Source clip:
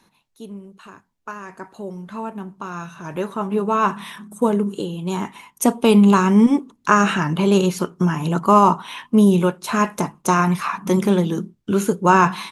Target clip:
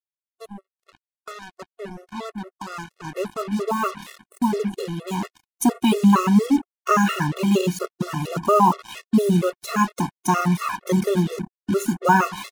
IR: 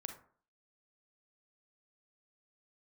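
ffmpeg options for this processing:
-af "acrusher=bits=4:mix=0:aa=0.5,afftfilt=real='re*gt(sin(2*PI*4.3*pts/sr)*(1-2*mod(floor(b*sr/1024/360),2)),0)':imag='im*gt(sin(2*PI*4.3*pts/sr)*(1-2*mod(floor(b*sr/1024/360),2)),0)':win_size=1024:overlap=0.75"

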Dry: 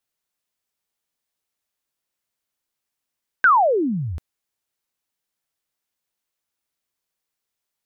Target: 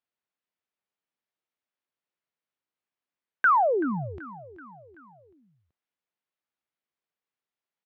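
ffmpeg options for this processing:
-af "aeval=exprs='0.355*(cos(1*acos(clip(val(0)/0.355,-1,1)))-cos(1*PI/2))+0.00447*(cos(4*acos(clip(val(0)/0.355,-1,1)))-cos(4*PI/2))':c=same,highpass=130,lowpass=2.9k,aecho=1:1:381|762|1143|1524:0.133|0.0693|0.0361|0.0188,volume=-5dB"

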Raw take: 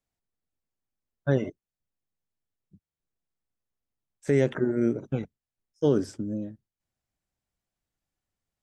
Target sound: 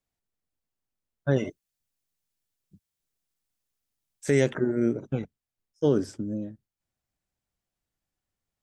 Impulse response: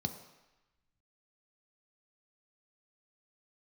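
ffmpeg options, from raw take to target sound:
-filter_complex "[0:a]asettb=1/sr,asplit=3[a][b][c];[a]atrim=end=1.364[d];[b]atrim=start=1.36:end=4.51,asetpts=PTS-STARTPTS,afade=t=in:d=0.004:c=qsin,afade=t=out:st=3.146:d=0.004:c=qsin,highshelf=f=2.4k:g=10.5[e];[c]atrim=start=4.506[f];[d][e]acrossfade=d=0.004:c1=hsin:c2=qsin[g];[g][f]acrossfade=d=0.004:c1=qsin:c2=hsin"

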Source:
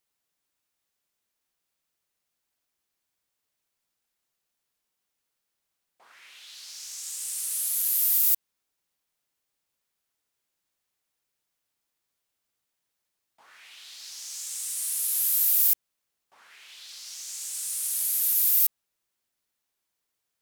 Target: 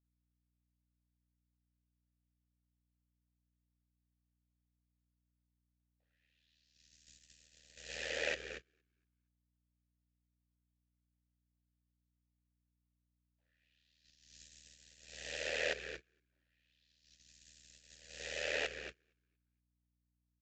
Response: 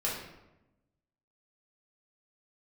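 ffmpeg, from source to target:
-filter_complex "[0:a]aexciter=amount=3.7:drive=1.2:freq=3.5k,asoftclip=type=tanh:threshold=-8.5dB,aresample=16000,aresample=44100,asplit=3[a][b][c];[a]bandpass=f=530:t=q:w=8,volume=0dB[d];[b]bandpass=f=1.84k:t=q:w=8,volume=-6dB[e];[c]bandpass=f=2.48k:t=q:w=8,volume=-9dB[f];[d][e][f]amix=inputs=3:normalize=0,asplit=5[g][h][i][j][k];[h]adelay=232,afreqshift=-66,volume=-10.5dB[l];[i]adelay=464,afreqshift=-132,volume=-20.1dB[m];[j]adelay=696,afreqshift=-198,volume=-29.8dB[n];[k]adelay=928,afreqshift=-264,volume=-39.4dB[o];[g][l][m][n][o]amix=inputs=5:normalize=0,aeval=exprs='val(0)*sin(2*PI*39*n/s)':c=same,highpass=f=270:p=1,aeval=exprs='val(0)+0.000447*(sin(2*PI*60*n/s)+sin(2*PI*2*60*n/s)/2+sin(2*PI*3*60*n/s)/3+sin(2*PI*4*60*n/s)/4+sin(2*PI*5*60*n/s)/5)':c=same,agate=range=-24dB:threshold=-56dB:ratio=16:detection=peak,volume=9dB"

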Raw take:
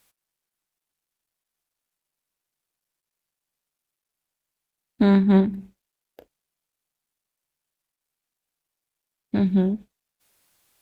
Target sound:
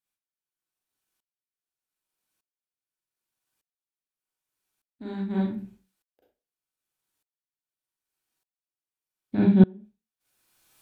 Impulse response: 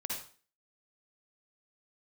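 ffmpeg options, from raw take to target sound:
-filter_complex "[0:a]asettb=1/sr,asplit=3[a][b][c];[a]atrim=end=9.354[d];[b]atrim=start=9.35:end=9.75,asetpts=PTS-STARTPTS,afade=t=in:d=0.004:c=qsin,afade=t=out:st=0.396:d=0.004:c=qsin,highpass=100,lowpass=3.3k[e];[c]atrim=start=9.746[f];[d][e]acrossfade=d=0.004:c1=hsin:c2=qsin[g];[g][f]acrossfade=d=0.004:c1=qsin:c2=hsin[h];[1:a]atrim=start_sample=2205,asetrate=66150,aresample=44100[i];[h][i]afir=irnorm=-1:irlink=0,aeval=exprs='val(0)*pow(10,-29*if(lt(mod(-0.83*n/s,1),2*abs(-0.83)/1000),1-mod(-0.83*n/s,1)/(2*abs(-0.83)/1000),(mod(-0.83*n/s,1)-2*abs(-0.83)/1000)/(1-2*abs(-0.83)/1000))/20)':c=same,volume=7.5dB"

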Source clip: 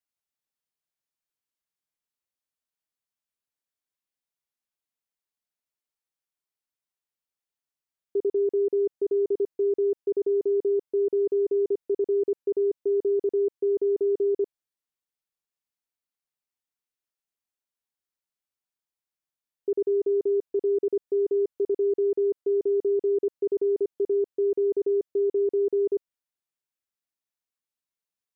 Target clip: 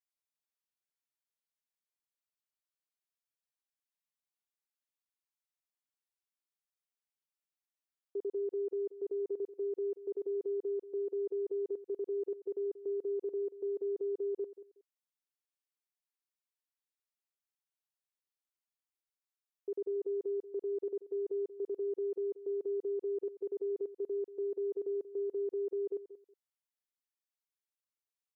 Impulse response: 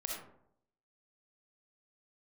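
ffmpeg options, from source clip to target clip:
-filter_complex "[0:a]highpass=f=600:p=1,asplit=2[a][b];[b]aecho=0:1:184|368:0.178|0.0391[c];[a][c]amix=inputs=2:normalize=0,volume=-6.5dB"

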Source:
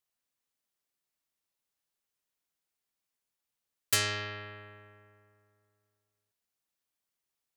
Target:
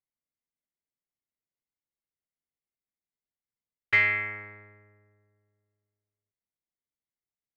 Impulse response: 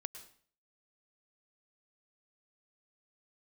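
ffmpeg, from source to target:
-af "adynamicsmooth=sensitivity=6:basefreq=530,lowpass=f=2.1k:t=q:w=15,volume=-2dB"

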